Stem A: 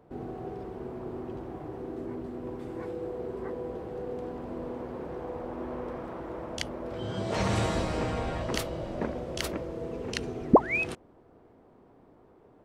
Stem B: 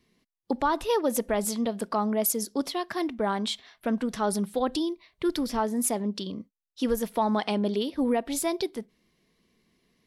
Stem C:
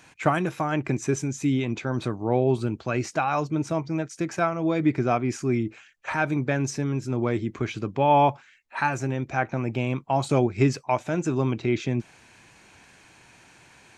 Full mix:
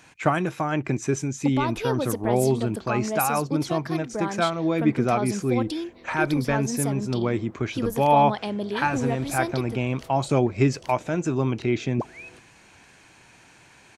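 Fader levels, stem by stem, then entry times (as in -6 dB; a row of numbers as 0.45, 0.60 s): -14.0, -2.5, +0.5 dB; 1.45, 0.95, 0.00 s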